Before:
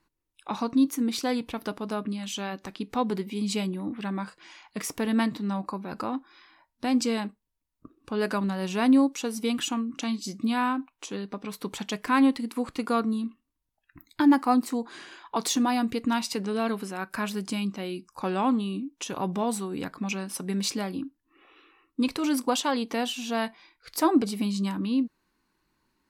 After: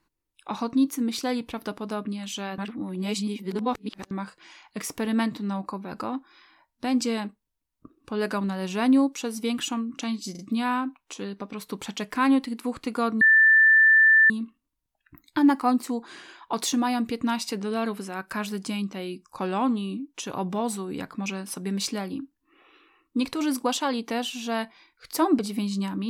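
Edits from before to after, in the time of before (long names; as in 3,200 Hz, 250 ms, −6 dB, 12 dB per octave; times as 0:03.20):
0:02.58–0:04.11: reverse
0:10.31: stutter 0.04 s, 3 plays
0:13.13: insert tone 1,770 Hz −13 dBFS 1.09 s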